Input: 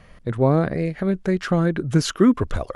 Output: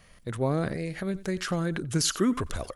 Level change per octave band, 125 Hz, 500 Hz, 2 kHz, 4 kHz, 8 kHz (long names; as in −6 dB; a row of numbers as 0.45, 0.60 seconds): −9.0, −9.0, −5.0, −0.5, +3.5 decibels